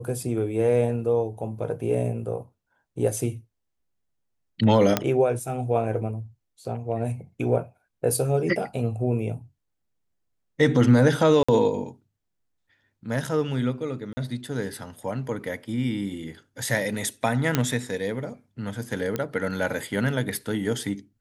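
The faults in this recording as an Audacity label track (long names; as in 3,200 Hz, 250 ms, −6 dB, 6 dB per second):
4.970000	4.970000	click −5 dBFS
11.430000	11.480000	drop-out 55 ms
14.130000	14.170000	drop-out 40 ms
17.550000	17.550000	click −6 dBFS
19.160000	19.160000	click −13 dBFS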